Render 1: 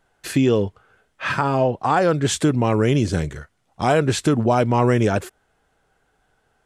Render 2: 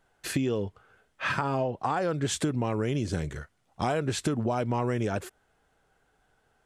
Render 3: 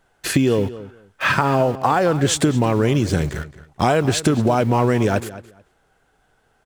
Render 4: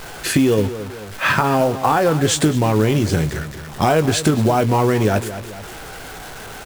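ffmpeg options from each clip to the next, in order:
-af "acompressor=threshold=-21dB:ratio=6,volume=-3.5dB"
-filter_complex "[0:a]asplit=2[a][b];[b]aeval=exprs='val(0)*gte(abs(val(0)),0.0133)':c=same,volume=-4dB[c];[a][c]amix=inputs=2:normalize=0,asplit=2[d][e];[e]adelay=218,lowpass=f=4.8k:p=1,volume=-15.5dB,asplit=2[f][g];[g]adelay=218,lowpass=f=4.8k:p=1,volume=0.18[h];[d][f][h]amix=inputs=3:normalize=0,volume=6.5dB"
-filter_complex "[0:a]aeval=exprs='val(0)+0.5*0.0376*sgn(val(0))':c=same,asplit=2[a][b];[b]adelay=19,volume=-10dB[c];[a][c]amix=inputs=2:normalize=0,acrusher=bits=5:mode=log:mix=0:aa=0.000001"

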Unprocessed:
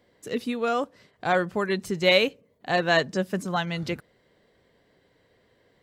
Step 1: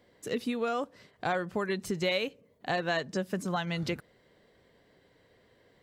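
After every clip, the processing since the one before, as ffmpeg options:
-af "acompressor=threshold=-28dB:ratio=4"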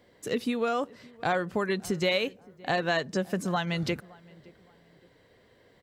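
-filter_complex "[0:a]asplit=2[a][b];[b]adelay=568,lowpass=f=1.6k:p=1,volume=-23dB,asplit=2[c][d];[d]adelay=568,lowpass=f=1.6k:p=1,volume=0.36[e];[a][c][e]amix=inputs=3:normalize=0,volume=3dB"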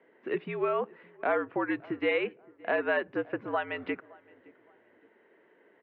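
-af "highpass=f=340:t=q:w=0.5412,highpass=f=340:t=q:w=1.307,lowpass=f=2.6k:t=q:w=0.5176,lowpass=f=2.6k:t=q:w=0.7071,lowpass=f=2.6k:t=q:w=1.932,afreqshift=-68"

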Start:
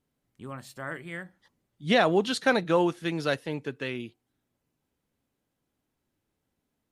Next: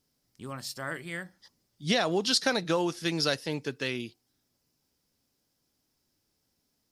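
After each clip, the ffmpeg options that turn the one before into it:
-af "equalizer=f=5.1k:w=2.3:g=14.5,acompressor=threshold=-23dB:ratio=6,highshelf=f=7.1k:g=10"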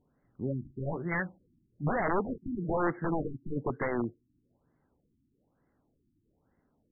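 -af "acompressor=threshold=-29dB:ratio=16,aeval=exprs='(mod(25.1*val(0)+1,2)-1)/25.1':c=same,afftfilt=real='re*lt(b*sr/1024,340*pow(2200/340,0.5+0.5*sin(2*PI*1.1*pts/sr)))':imag='im*lt(b*sr/1024,340*pow(2200/340,0.5+0.5*sin(2*PI*1.1*pts/sr)))':win_size=1024:overlap=0.75,volume=8dB"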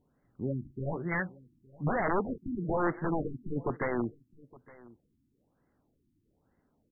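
-af "aecho=1:1:865:0.075"

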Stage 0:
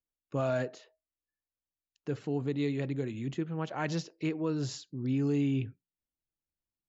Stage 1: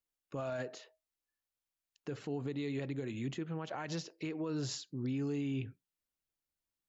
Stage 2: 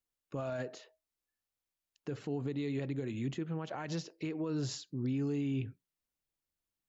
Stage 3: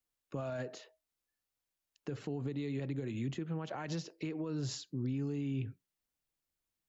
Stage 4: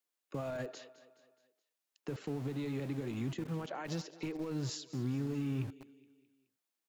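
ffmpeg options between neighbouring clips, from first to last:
-af "lowshelf=f=370:g=-5,alimiter=level_in=7.5dB:limit=-24dB:level=0:latency=1:release=99,volume=-7.5dB,volume=2dB"
-af "lowshelf=f=460:g=4,volume=-1dB"
-filter_complex "[0:a]acrossover=split=150[a][b];[b]acompressor=threshold=-37dB:ratio=6[c];[a][c]amix=inputs=2:normalize=0,volume=1dB"
-filter_complex "[0:a]aecho=1:1:211|422|633|844:0.158|0.0792|0.0396|0.0198,acrossover=split=210|1900[a][b][c];[a]aeval=exprs='val(0)*gte(abs(val(0)),0.00531)':c=same[d];[d][b][c]amix=inputs=3:normalize=0"

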